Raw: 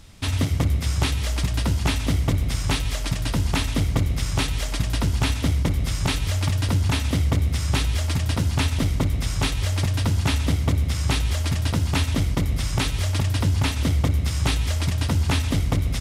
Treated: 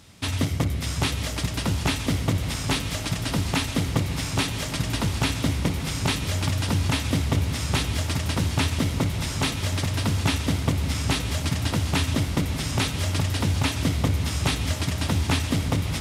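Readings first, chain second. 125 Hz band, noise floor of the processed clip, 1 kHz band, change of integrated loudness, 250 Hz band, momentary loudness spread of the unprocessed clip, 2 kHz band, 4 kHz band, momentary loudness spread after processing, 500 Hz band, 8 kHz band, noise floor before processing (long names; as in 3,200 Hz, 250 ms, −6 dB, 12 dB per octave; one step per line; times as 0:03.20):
−3.0 dB, −31 dBFS, +0.5 dB, −2.0 dB, +0.5 dB, 2 LU, +0.5 dB, +0.5 dB, 3 LU, +0.5 dB, +0.5 dB, −27 dBFS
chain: high-pass filter 100 Hz 12 dB per octave
on a send: feedback delay with all-pass diffusion 654 ms, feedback 72%, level −10.5 dB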